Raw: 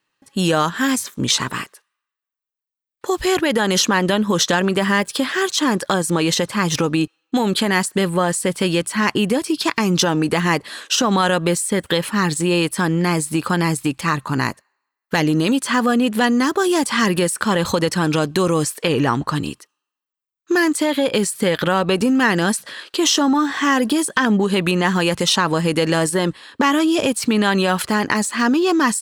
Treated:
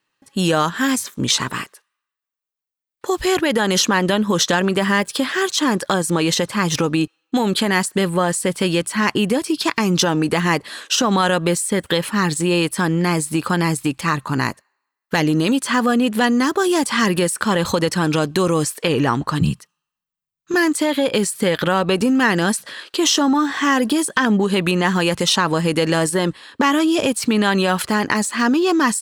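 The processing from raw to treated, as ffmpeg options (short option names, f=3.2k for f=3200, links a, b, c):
-filter_complex "[0:a]asettb=1/sr,asplit=3[a][b][c];[a]atrim=end=19.414[d];[b]atrim=start=19.41:end=20.54,asetpts=PTS-STARTPTS,afade=t=in:d=0.004:c=qsin,afade=t=out:st=1.126:d=0.004:c=qsin,lowshelf=f=230:t=q:w=3:g=9.5[e];[c]atrim=start=20.536[f];[d][e]acrossfade=d=0.004:c1=hsin:c2=qsin[g];[g][f]acrossfade=d=0.004:c1=qsin:c2=hsin"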